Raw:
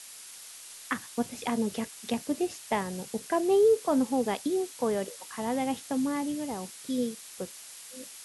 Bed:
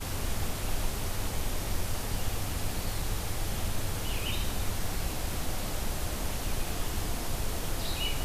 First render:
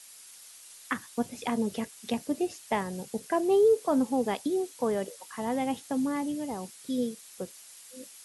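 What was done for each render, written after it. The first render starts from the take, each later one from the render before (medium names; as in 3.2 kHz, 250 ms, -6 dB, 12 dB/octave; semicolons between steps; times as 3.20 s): noise reduction 6 dB, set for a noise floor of -47 dBFS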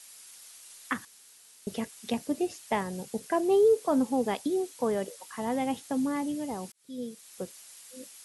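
1.05–1.67 s: room tone; 6.72–7.40 s: fade in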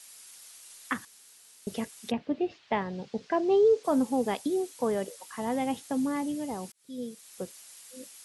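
2.10–3.83 s: low-pass 3.2 kHz -> 6.3 kHz 24 dB/octave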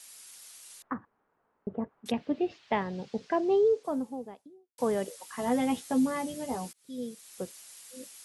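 0.82–2.06 s: low-pass 1.2 kHz 24 dB/octave; 3.10–4.78 s: studio fade out; 5.37–6.80 s: doubling 12 ms -3 dB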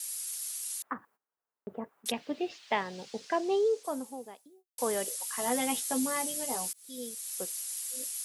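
RIAA curve recording; gate -60 dBFS, range -20 dB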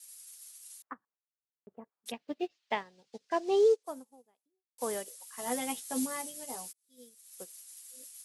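in parallel at -2 dB: peak limiter -23.5 dBFS, peak gain reduction 9 dB; on the sum: upward expansion 2.5:1, over -41 dBFS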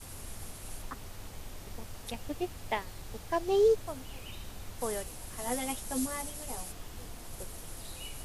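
add bed -12.5 dB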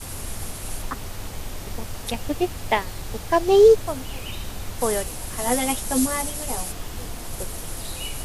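trim +11.5 dB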